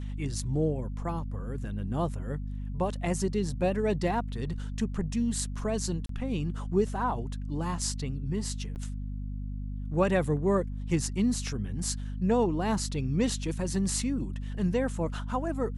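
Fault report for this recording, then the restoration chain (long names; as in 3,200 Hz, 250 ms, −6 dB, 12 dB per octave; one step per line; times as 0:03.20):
mains hum 50 Hz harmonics 5 −35 dBFS
0:06.06–0:06.09: drop-out 33 ms
0:08.75–0:08.76: drop-out 9.1 ms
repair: hum removal 50 Hz, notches 5
repair the gap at 0:06.06, 33 ms
repair the gap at 0:08.75, 9.1 ms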